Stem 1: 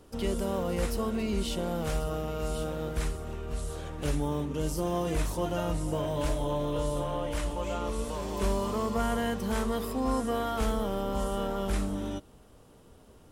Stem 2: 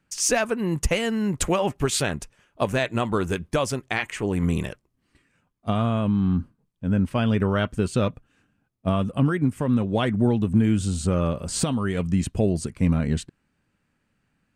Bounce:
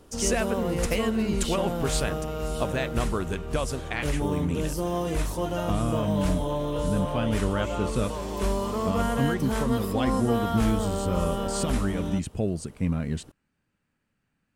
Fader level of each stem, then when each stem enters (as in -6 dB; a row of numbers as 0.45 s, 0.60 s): +2.0 dB, -5.5 dB; 0.00 s, 0.00 s